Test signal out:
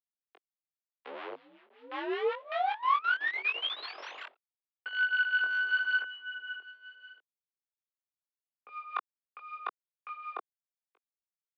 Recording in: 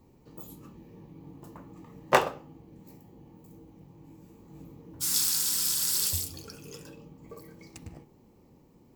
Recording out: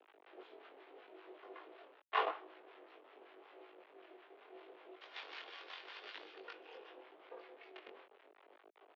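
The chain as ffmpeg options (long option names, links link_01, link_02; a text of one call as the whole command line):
ffmpeg -i in.wav -filter_complex "[0:a]areverse,acompressor=threshold=-33dB:ratio=12,areverse,aecho=1:1:2.9:0.97,asplit=2[link_01][link_02];[link_02]adelay=1283,volume=-25dB,highshelf=frequency=4000:gain=-28.9[link_03];[link_01][link_03]amix=inputs=2:normalize=0,anlmdn=0.000398,aresample=16000,acrusher=bits=6:dc=4:mix=0:aa=0.000001,aresample=44100,acrossover=split=760[link_04][link_05];[link_04]aeval=exprs='val(0)*(1-0.7/2+0.7/2*cos(2*PI*5.3*n/s))':channel_layout=same[link_06];[link_05]aeval=exprs='val(0)*(1-0.7/2-0.7/2*cos(2*PI*5.3*n/s))':channel_layout=same[link_07];[link_06][link_07]amix=inputs=2:normalize=0,highpass=frequency=340:width_type=q:width=0.5412,highpass=frequency=340:width_type=q:width=1.307,lowpass=frequency=3300:width_type=q:width=0.5176,lowpass=frequency=3300:width_type=q:width=0.7071,lowpass=frequency=3300:width_type=q:width=1.932,afreqshift=50,flanger=delay=19:depth=3.9:speed=0.81,adynamicequalizer=threshold=0.00251:dfrequency=1100:dqfactor=2.1:tfrequency=1100:tqfactor=2.1:attack=5:release=100:ratio=0.375:range=2.5:mode=boostabove:tftype=bell,volume=4dB" out.wav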